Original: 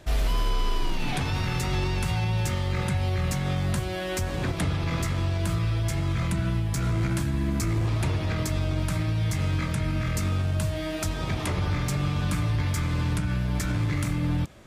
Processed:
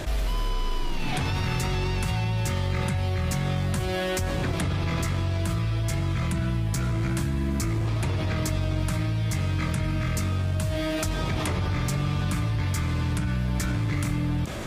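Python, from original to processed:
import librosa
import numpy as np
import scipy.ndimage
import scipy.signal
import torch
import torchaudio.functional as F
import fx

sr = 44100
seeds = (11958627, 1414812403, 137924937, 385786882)

y = fx.env_flatten(x, sr, amount_pct=70)
y = F.gain(torch.from_numpy(y), -3.0).numpy()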